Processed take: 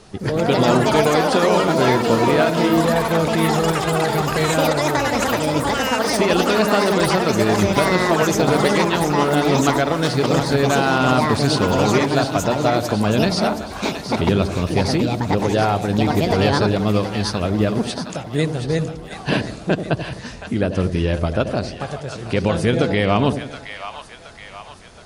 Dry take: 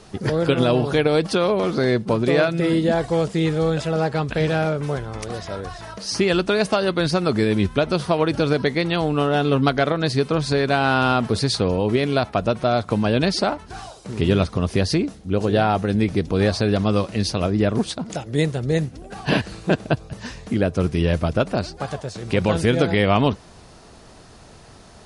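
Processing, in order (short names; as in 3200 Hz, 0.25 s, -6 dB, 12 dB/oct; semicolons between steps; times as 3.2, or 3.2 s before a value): echoes that change speed 0.194 s, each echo +6 st, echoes 3; split-band echo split 720 Hz, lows 85 ms, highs 0.722 s, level -9 dB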